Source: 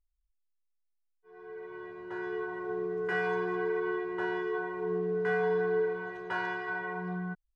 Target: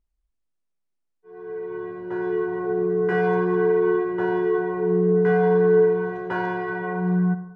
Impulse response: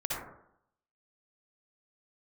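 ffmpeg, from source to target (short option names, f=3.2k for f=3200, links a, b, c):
-filter_complex "[0:a]equalizer=f=190:w=0.3:g=13,asplit=2[a][b];[1:a]atrim=start_sample=2205,lowpass=3.5k,lowshelf=f=150:g=-11[c];[b][c]afir=irnorm=-1:irlink=0,volume=-12dB[d];[a][d]amix=inputs=2:normalize=0,aresample=22050,aresample=44100"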